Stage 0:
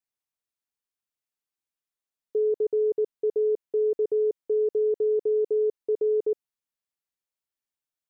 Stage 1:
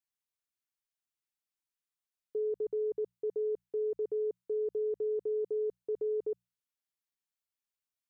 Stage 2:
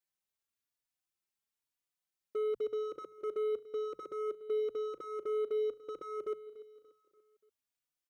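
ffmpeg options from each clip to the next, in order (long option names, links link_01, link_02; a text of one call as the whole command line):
ffmpeg -i in.wav -af "equalizer=frequency=460:width_type=o:width=1.7:gain=-6,bandreject=frequency=60:width_type=h:width=6,bandreject=frequency=120:width_type=h:width=6,bandreject=frequency=180:width_type=h:width=6,volume=-3dB" out.wav
ffmpeg -i in.wav -filter_complex "[0:a]asoftclip=type=hard:threshold=-34dB,aecho=1:1:290|580|870|1160:0.141|0.0678|0.0325|0.0156,asplit=2[link_01][link_02];[link_02]adelay=3.5,afreqshift=1[link_03];[link_01][link_03]amix=inputs=2:normalize=1,volume=3.5dB" out.wav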